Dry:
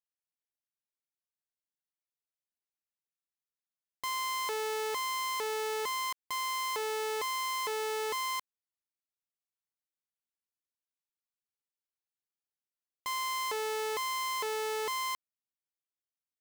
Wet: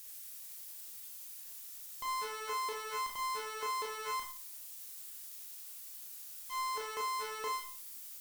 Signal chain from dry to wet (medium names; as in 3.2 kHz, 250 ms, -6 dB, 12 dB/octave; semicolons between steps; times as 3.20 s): zero-crossing glitches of -40 dBFS; granular stretch 0.5×, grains 175 ms; valve stage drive 37 dB, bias 0.35; Schroeder reverb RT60 0.38 s, combs from 26 ms, DRR 0 dB